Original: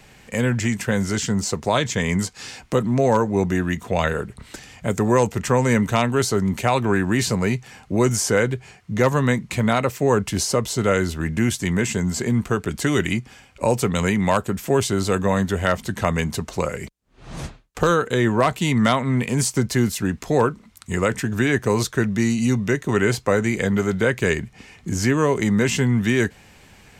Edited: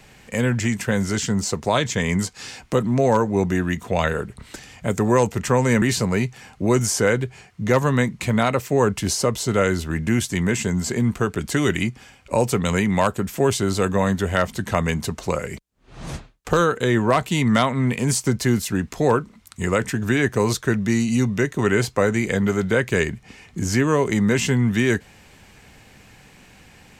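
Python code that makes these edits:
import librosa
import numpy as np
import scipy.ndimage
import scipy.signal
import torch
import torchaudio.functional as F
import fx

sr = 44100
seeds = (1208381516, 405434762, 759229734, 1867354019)

y = fx.edit(x, sr, fx.cut(start_s=5.82, length_s=1.3), tone=tone)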